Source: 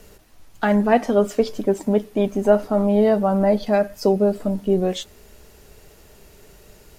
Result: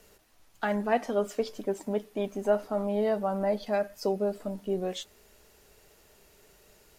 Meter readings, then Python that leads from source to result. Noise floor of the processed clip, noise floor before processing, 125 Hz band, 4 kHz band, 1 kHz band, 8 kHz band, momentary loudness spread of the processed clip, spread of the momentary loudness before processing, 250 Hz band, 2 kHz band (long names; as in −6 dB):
−61 dBFS, −49 dBFS, below −10 dB, −7.5 dB, −8.5 dB, can't be measured, 7 LU, 6 LU, −13.0 dB, −8.0 dB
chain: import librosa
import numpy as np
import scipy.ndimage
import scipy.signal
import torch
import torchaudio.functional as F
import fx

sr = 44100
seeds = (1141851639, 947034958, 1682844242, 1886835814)

y = fx.low_shelf(x, sr, hz=300.0, db=-8.5)
y = y * librosa.db_to_amplitude(-7.5)